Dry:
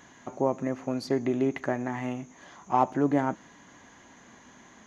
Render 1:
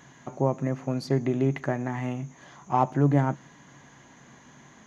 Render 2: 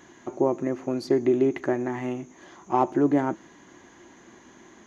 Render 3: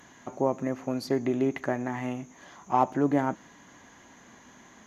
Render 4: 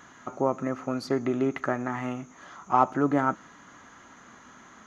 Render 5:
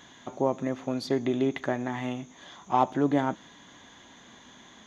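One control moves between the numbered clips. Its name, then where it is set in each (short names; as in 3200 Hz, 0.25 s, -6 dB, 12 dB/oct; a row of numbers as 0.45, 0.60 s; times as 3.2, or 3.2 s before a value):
bell, frequency: 140, 350, 13000, 1300, 3500 Hz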